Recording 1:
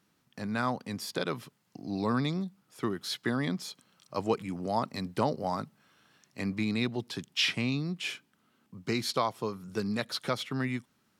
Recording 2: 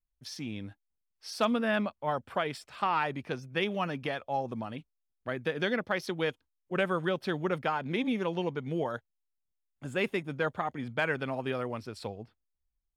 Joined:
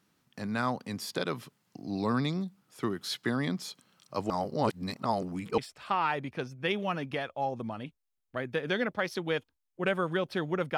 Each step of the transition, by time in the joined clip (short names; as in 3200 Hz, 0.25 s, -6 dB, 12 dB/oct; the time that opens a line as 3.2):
recording 1
4.3–5.58 reverse
5.58 switch to recording 2 from 2.5 s